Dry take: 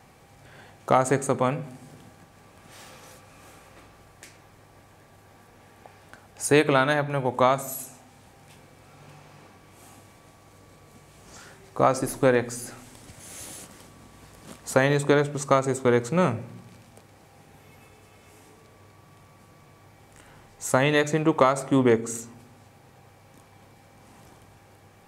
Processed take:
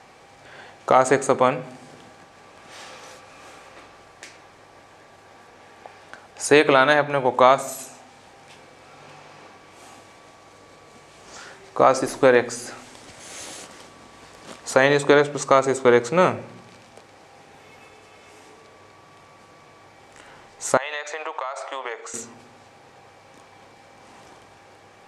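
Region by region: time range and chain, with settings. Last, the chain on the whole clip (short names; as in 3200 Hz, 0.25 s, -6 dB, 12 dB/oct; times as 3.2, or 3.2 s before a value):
20.77–22.14 HPF 630 Hz 24 dB/oct + compressor 10:1, threshold -31 dBFS + air absorption 62 m
whole clip: LPF 6400 Hz 12 dB/oct; tone controls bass -12 dB, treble +1 dB; maximiser +8 dB; gain -1 dB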